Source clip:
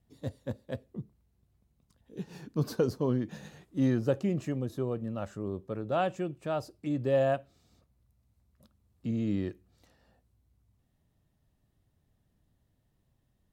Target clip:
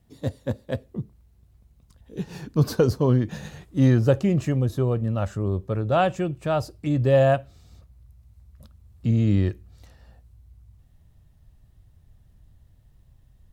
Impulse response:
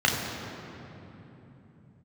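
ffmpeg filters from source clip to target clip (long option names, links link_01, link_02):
-af "asubboost=boost=4.5:cutoff=110,volume=9dB"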